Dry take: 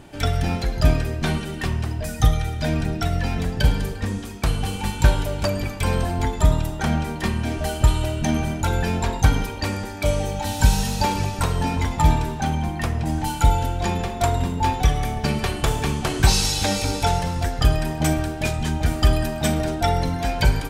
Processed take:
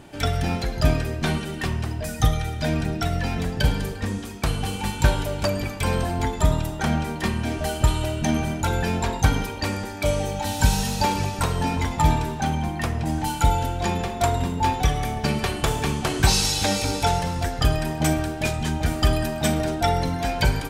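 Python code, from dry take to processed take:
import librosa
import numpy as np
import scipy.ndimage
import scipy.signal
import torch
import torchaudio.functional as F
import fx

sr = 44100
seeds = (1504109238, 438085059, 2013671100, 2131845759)

y = fx.low_shelf(x, sr, hz=66.0, db=-6.5)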